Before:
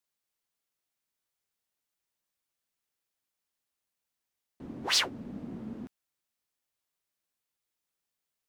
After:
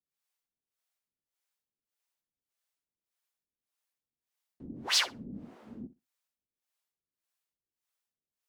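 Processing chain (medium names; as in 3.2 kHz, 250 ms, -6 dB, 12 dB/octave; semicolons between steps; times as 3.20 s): flutter echo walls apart 10.6 m, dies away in 0.23 s; harmonic tremolo 1.7 Hz, depth 100%, crossover 480 Hz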